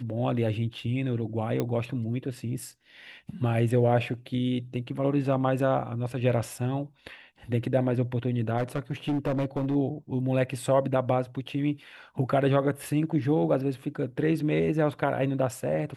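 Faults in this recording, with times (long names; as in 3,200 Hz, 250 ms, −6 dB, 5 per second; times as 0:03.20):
0:01.60: click −15 dBFS
0:08.57–0:09.76: clipping −23 dBFS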